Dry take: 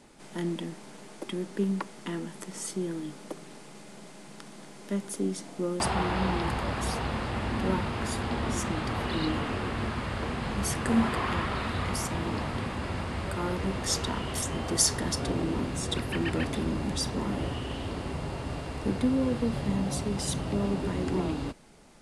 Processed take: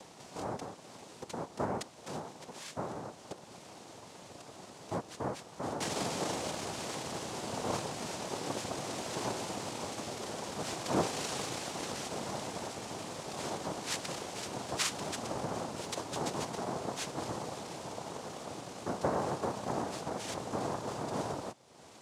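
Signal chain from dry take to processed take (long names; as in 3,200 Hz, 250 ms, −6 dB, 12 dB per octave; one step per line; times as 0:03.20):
upward compression, threshold −35 dBFS
cochlear-implant simulation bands 2
level −7 dB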